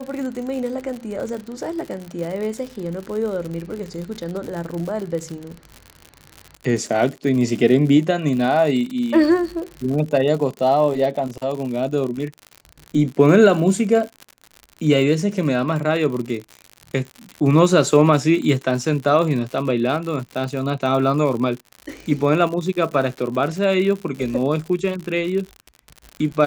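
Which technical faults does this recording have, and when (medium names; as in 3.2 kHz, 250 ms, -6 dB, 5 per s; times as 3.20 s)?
crackle 92 per s -27 dBFS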